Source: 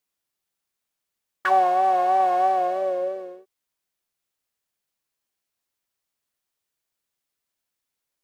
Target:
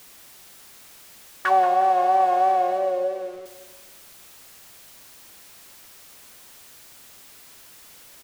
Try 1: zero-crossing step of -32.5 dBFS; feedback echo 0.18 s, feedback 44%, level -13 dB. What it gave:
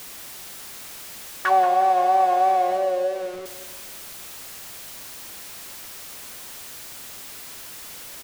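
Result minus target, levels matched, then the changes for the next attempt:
zero-crossing step: distortion +8 dB
change: zero-crossing step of -41.5 dBFS

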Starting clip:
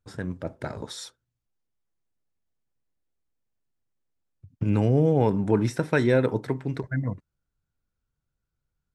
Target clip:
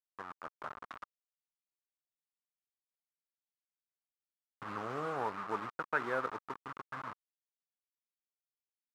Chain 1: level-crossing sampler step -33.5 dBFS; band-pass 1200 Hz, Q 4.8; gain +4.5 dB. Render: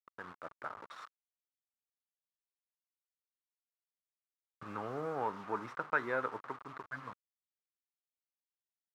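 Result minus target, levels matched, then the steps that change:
level-crossing sampler: distortion -12 dB
change: level-crossing sampler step -25.5 dBFS

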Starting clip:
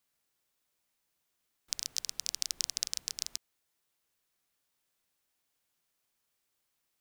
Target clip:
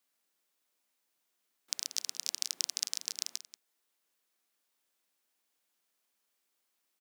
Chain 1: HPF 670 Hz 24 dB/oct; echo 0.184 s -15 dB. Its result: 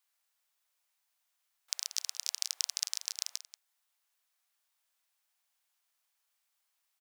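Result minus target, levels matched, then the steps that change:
500 Hz band -7.0 dB
change: HPF 200 Hz 24 dB/oct

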